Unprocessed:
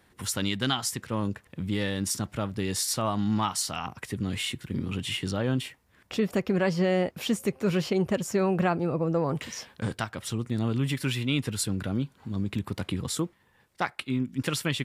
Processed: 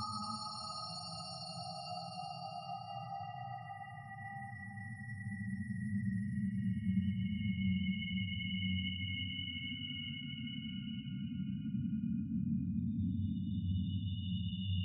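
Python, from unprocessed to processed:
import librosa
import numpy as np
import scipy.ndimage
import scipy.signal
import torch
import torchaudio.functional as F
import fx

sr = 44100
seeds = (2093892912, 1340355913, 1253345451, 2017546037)

y = fx.spec_topn(x, sr, count=2)
y = fx.room_flutter(y, sr, wall_m=9.1, rt60_s=0.22)
y = fx.paulstretch(y, sr, seeds[0], factor=10.0, window_s=0.5, from_s=3.54)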